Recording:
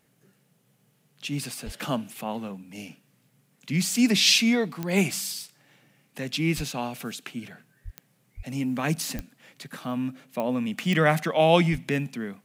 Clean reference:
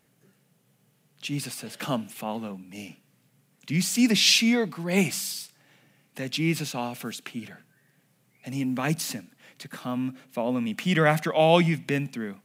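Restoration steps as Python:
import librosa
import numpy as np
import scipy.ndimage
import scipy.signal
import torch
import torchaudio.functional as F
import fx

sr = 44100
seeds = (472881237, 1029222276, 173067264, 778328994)

y = fx.fix_declick_ar(x, sr, threshold=10.0)
y = fx.fix_deplosive(y, sr, at_s=(1.65, 6.56, 7.84, 8.36, 9.15, 11.71))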